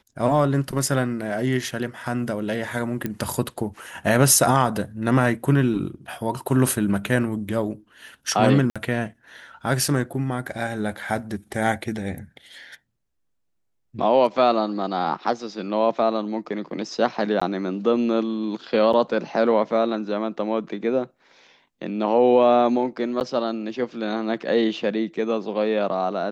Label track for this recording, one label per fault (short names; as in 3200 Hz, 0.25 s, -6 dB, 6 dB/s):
3.060000	3.060000	pop -13 dBFS
8.700000	8.760000	gap 56 ms
17.400000	17.410000	gap 15 ms
18.930000	18.930000	gap 3.5 ms
23.200000	23.210000	gap 9.5 ms